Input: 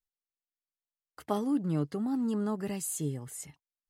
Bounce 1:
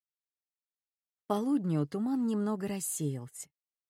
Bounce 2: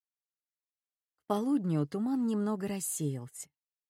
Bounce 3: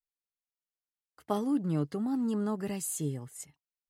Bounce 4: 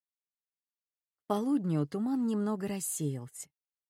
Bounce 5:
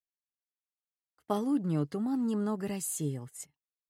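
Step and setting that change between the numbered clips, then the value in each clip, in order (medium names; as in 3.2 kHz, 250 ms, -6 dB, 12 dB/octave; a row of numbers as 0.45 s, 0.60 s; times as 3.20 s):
gate, range: -60 dB, -33 dB, -9 dB, -47 dB, -21 dB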